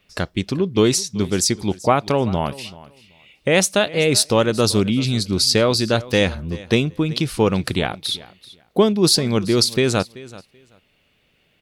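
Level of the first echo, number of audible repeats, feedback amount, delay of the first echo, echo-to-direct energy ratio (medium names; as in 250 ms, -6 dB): -19.5 dB, 2, 18%, 383 ms, -19.5 dB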